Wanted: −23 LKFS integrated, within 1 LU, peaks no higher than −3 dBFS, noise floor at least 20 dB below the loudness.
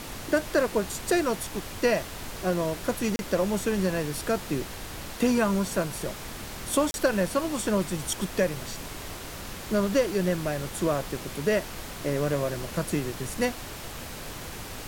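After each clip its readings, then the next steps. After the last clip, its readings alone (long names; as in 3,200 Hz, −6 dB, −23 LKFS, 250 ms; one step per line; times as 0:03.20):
number of dropouts 2; longest dropout 31 ms; background noise floor −39 dBFS; target noise floor −49 dBFS; integrated loudness −28.5 LKFS; sample peak −10.5 dBFS; target loudness −23.0 LKFS
→ repair the gap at 0:03.16/0:06.91, 31 ms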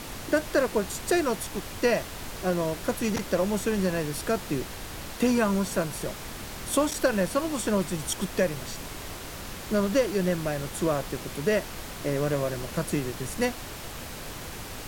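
number of dropouts 0; background noise floor −39 dBFS; target noise floor −49 dBFS
→ noise reduction from a noise print 10 dB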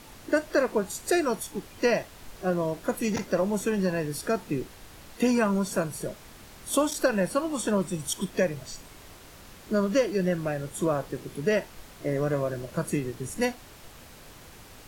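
background noise floor −49 dBFS; integrated loudness −28.0 LKFS; sample peak −10.5 dBFS; target loudness −23.0 LKFS
→ level +5 dB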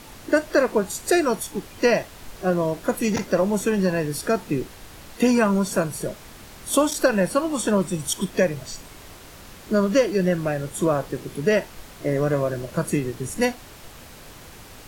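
integrated loudness −23.0 LKFS; sample peak −5.5 dBFS; background noise floor −44 dBFS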